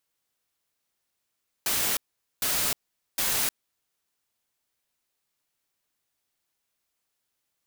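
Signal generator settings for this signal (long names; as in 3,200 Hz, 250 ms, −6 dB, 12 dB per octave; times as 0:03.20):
noise bursts white, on 0.31 s, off 0.45 s, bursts 3, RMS −26 dBFS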